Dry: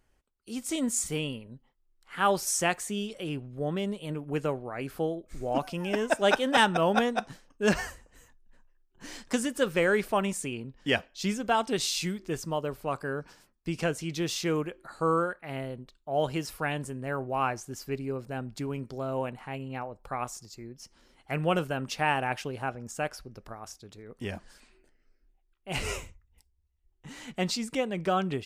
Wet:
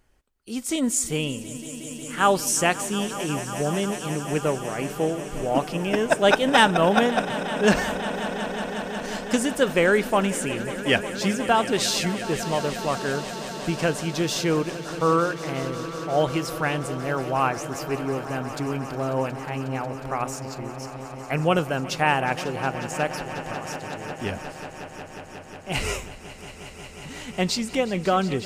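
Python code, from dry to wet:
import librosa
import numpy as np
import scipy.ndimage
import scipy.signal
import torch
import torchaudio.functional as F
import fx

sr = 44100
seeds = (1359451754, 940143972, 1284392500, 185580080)

y = fx.echo_swell(x, sr, ms=181, loudest=5, wet_db=-16.5)
y = y * 10.0 ** (5.5 / 20.0)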